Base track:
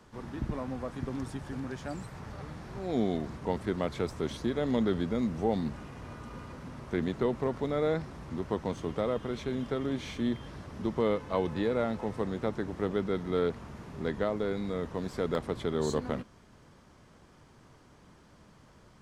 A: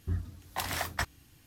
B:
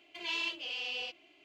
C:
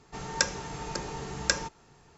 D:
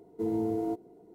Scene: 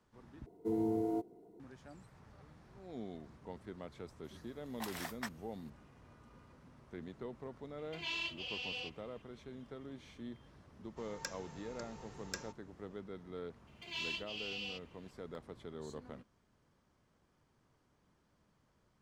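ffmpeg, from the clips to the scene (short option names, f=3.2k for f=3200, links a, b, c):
-filter_complex "[2:a]asplit=2[a][b];[0:a]volume=-16.5dB[c];[1:a]highpass=280[d];[3:a]asoftclip=type=hard:threshold=-10.5dB[e];[b]highshelf=f=3.7k:g=6.5[f];[c]asplit=2[g][h];[g]atrim=end=0.464[i];[4:a]atrim=end=1.14,asetpts=PTS-STARTPTS,volume=-4dB[j];[h]atrim=start=1.596[k];[d]atrim=end=1.46,asetpts=PTS-STARTPTS,volume=-10.5dB,afade=t=in:d=0.004:c=hsin,afade=t=out:st=1.456:d=0.004:c=hsin,adelay=4240[l];[a]atrim=end=1.44,asetpts=PTS-STARTPTS,volume=-4.5dB,afade=t=in:d=0.004:c=hsin,afade=t=out:st=1.436:d=0.004:c=hsin,adelay=343098S[m];[e]atrim=end=2.17,asetpts=PTS-STARTPTS,volume=-16.5dB,afade=t=in:d=0.004:c=hsin,afade=t=out:st=2.166:d=0.004:c=hsin,adelay=10840[n];[f]atrim=end=1.44,asetpts=PTS-STARTPTS,volume=-8dB,afade=t=in:d=0.004:c=hsin,afade=t=out:st=1.436:d=0.004:c=hsin,adelay=13670[o];[i][j]acrossfade=d=0.004:c1=hsin:c2=hsin[p];[p][k]acrossfade=d=0.004:c1=hsin:c2=hsin[q];[q][l][m][n][o]amix=inputs=5:normalize=0"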